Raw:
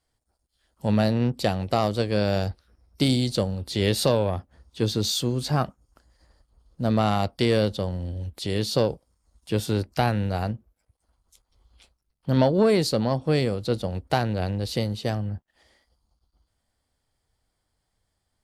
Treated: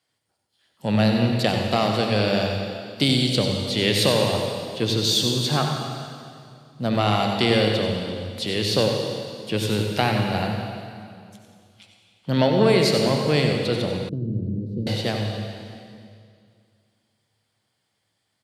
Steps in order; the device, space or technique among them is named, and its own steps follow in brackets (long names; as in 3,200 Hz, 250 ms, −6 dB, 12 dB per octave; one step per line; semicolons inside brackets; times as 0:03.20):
PA in a hall (high-pass filter 110 Hz 24 dB per octave; parametric band 2,800 Hz +7.5 dB 1.5 octaves; single-tap delay 94 ms −9 dB; convolution reverb RT60 2.3 s, pre-delay 59 ms, DRR 3 dB)
0:14.09–0:14.87: inverse Chebyshev low-pass filter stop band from 730 Hz, stop band 40 dB